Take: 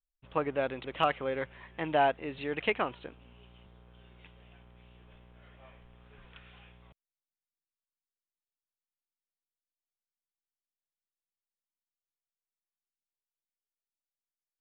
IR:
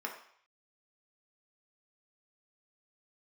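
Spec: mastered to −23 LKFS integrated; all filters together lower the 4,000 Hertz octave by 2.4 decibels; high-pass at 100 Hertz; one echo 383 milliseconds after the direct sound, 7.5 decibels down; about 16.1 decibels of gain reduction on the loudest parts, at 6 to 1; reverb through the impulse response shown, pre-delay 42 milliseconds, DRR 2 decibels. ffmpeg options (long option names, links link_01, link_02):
-filter_complex "[0:a]highpass=100,equalizer=frequency=4000:width_type=o:gain=-4,acompressor=threshold=-39dB:ratio=6,aecho=1:1:383:0.422,asplit=2[link_01][link_02];[1:a]atrim=start_sample=2205,adelay=42[link_03];[link_02][link_03]afir=irnorm=-1:irlink=0,volume=-4.5dB[link_04];[link_01][link_04]amix=inputs=2:normalize=0,volume=20dB"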